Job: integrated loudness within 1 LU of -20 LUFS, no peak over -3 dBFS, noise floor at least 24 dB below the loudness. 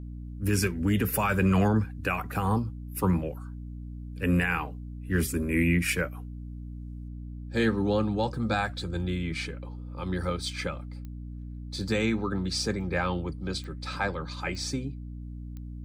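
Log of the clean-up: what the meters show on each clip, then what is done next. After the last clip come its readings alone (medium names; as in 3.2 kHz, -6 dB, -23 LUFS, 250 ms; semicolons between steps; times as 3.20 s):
clicks found 4; hum 60 Hz; highest harmonic 300 Hz; hum level -37 dBFS; loudness -29.0 LUFS; peak level -13.5 dBFS; loudness target -20.0 LUFS
-> de-click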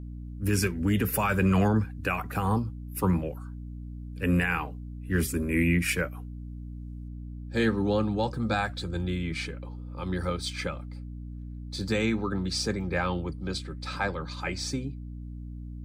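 clicks found 0; hum 60 Hz; highest harmonic 300 Hz; hum level -37 dBFS
-> hum notches 60/120/180/240/300 Hz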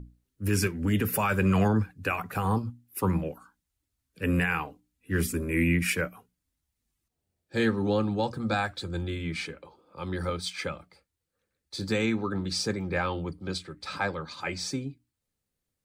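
hum not found; loudness -29.0 LUFS; peak level -14.0 dBFS; loudness target -20.0 LUFS
-> trim +9 dB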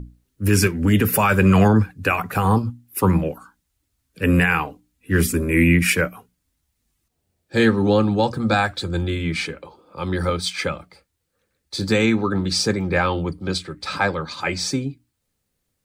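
loudness -20.0 LUFS; peak level -5.0 dBFS; noise floor -75 dBFS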